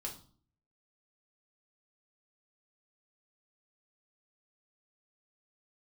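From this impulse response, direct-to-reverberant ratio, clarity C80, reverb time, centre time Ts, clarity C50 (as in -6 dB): -1.5 dB, 15.0 dB, 0.45 s, 18 ms, 9.5 dB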